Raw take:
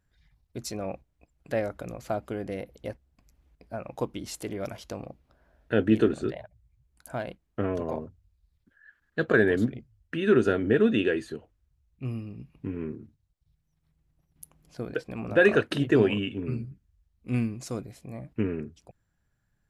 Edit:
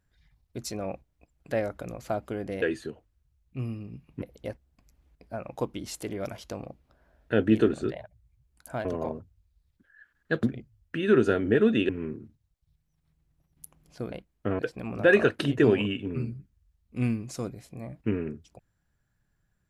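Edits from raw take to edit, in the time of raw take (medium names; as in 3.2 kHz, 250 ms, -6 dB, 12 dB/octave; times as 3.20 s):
7.25–7.72 s: move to 14.91 s
9.30–9.62 s: delete
11.08–12.68 s: move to 2.62 s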